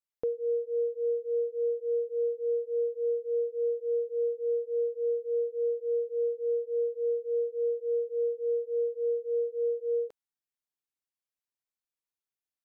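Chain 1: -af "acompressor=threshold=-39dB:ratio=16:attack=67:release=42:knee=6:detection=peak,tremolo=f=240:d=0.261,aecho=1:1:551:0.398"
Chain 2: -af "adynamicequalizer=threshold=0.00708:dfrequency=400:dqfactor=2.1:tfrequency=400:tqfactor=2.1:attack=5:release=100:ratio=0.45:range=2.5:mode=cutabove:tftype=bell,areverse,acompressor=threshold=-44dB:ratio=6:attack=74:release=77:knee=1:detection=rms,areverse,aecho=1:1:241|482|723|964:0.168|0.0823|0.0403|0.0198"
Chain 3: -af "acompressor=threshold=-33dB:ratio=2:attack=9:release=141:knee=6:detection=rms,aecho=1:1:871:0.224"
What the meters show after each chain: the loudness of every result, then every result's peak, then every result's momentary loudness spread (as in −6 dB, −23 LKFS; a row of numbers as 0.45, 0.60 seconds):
−41.5, −42.0, −36.0 LKFS; −24.5, −36.0, −24.5 dBFS; 2, 1, 3 LU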